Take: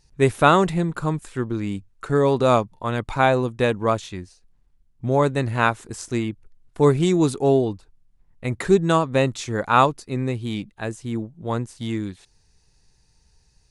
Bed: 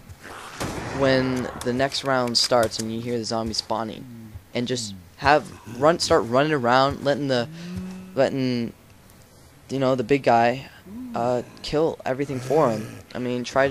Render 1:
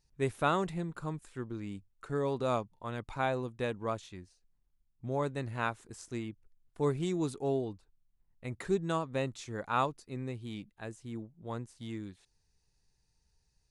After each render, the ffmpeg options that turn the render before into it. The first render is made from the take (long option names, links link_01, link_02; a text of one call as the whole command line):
ffmpeg -i in.wav -af "volume=-14dB" out.wav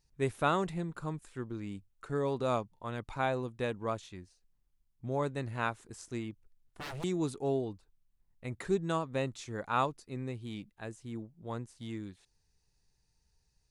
ffmpeg -i in.wav -filter_complex "[0:a]asettb=1/sr,asplit=3[link_01][link_02][link_03];[link_01]atrim=end=6.304[link_04];[link_02]atrim=start=6.3:end=7.04,asetpts=PTS-STARTPTS,afade=type=in:duration=0.004:curve=qsin,afade=type=out:start_time=0.736:duration=0.004:curve=qsin,aeval=exprs='0.015*(abs(mod(val(0)/0.015+3,4)-2)-1)':channel_layout=same[link_05];[link_03]atrim=start=7.036[link_06];[link_04][link_05]acrossfade=duration=0.004:curve1=hsin:curve2=qsin[link_07];[link_07][link_06]acrossfade=duration=0.004:curve1=qsin:curve2=hsin" out.wav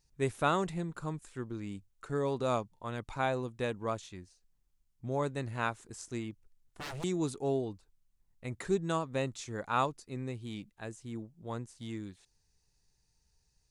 ffmpeg -i in.wav -af "equalizer=frequency=7000:width_type=o:width=1:gain=4" out.wav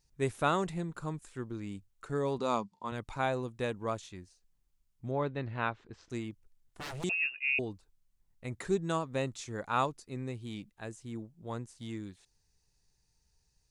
ffmpeg -i in.wav -filter_complex "[0:a]asettb=1/sr,asplit=3[link_01][link_02][link_03];[link_01]atrim=end=2.384[link_04];[link_02]atrim=start=2.38:end=2.92,asetpts=PTS-STARTPTS,afade=type=in:duration=0.004:curve=qsin,afade=type=out:start_time=0.536:duration=0.004:curve=qsin,highpass=130,equalizer=frequency=130:width_type=q:width=4:gain=-8,equalizer=frequency=200:width_type=q:width=4:gain=8,equalizer=frequency=620:width_type=q:width=4:gain=-4,equalizer=frequency=970:width_type=q:width=4:gain=7,equalizer=frequency=1600:width_type=q:width=4:gain=-4,equalizer=frequency=4700:width_type=q:width=4:gain=6,lowpass=frequency=8700:width=0.5412,lowpass=frequency=8700:width=1.3066[link_05];[link_03]atrim=start=2.916[link_06];[link_04][link_05]acrossfade=duration=0.004:curve1=hsin:curve2=qsin[link_07];[link_07][link_06]acrossfade=duration=0.004:curve1=qsin:curve2=hsin,asettb=1/sr,asplit=3[link_08][link_09][link_10];[link_08]atrim=end=5.114[link_11];[link_09]atrim=start=5.11:end=6.1,asetpts=PTS-STARTPTS,afade=type=in:duration=0.004:curve=qsin,afade=type=out:start_time=0.986:duration=0.004:curve=qsin,lowpass=frequency=3900:width=0.5412,lowpass=frequency=3900:width=1.3066[link_12];[link_10]atrim=start=6.096[link_13];[link_11][link_12]acrossfade=duration=0.004:curve1=hsin:curve2=qsin[link_14];[link_14][link_13]acrossfade=duration=0.004:curve1=qsin:curve2=hsin,asettb=1/sr,asplit=3[link_15][link_16][link_17];[link_15]atrim=end=7.094[link_18];[link_16]atrim=start=7.09:end=7.59,asetpts=PTS-STARTPTS,afade=type=in:duration=0.004:curve=qsin,afade=type=out:start_time=0.496:duration=0.004:curve=qsin,lowpass=frequency=2500:width_type=q:width=0.5098,lowpass=frequency=2500:width_type=q:width=0.6013,lowpass=frequency=2500:width_type=q:width=0.9,lowpass=frequency=2500:width_type=q:width=2.563,afreqshift=-2900[link_19];[link_17]atrim=start=7.586[link_20];[link_18][link_19]acrossfade=duration=0.004:curve1=hsin:curve2=qsin[link_21];[link_21][link_20]acrossfade=duration=0.004:curve1=qsin:curve2=hsin" out.wav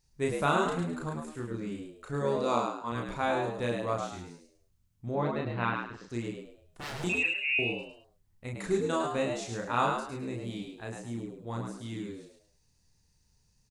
ffmpeg -i in.wav -filter_complex "[0:a]asplit=2[link_01][link_02];[link_02]adelay=34,volume=-2dB[link_03];[link_01][link_03]amix=inputs=2:normalize=0,asplit=5[link_04][link_05][link_06][link_07][link_08];[link_05]adelay=105,afreqshift=75,volume=-5dB[link_09];[link_06]adelay=210,afreqshift=150,volume=-15.2dB[link_10];[link_07]adelay=315,afreqshift=225,volume=-25.3dB[link_11];[link_08]adelay=420,afreqshift=300,volume=-35.5dB[link_12];[link_04][link_09][link_10][link_11][link_12]amix=inputs=5:normalize=0" out.wav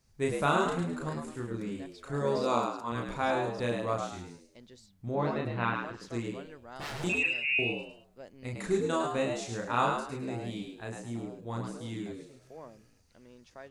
ffmpeg -i in.wav -i bed.wav -filter_complex "[1:a]volume=-28.5dB[link_01];[0:a][link_01]amix=inputs=2:normalize=0" out.wav